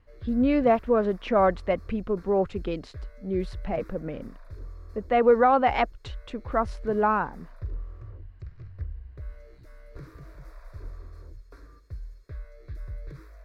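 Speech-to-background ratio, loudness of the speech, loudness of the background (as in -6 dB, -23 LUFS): 19.0 dB, -25.0 LUFS, -44.0 LUFS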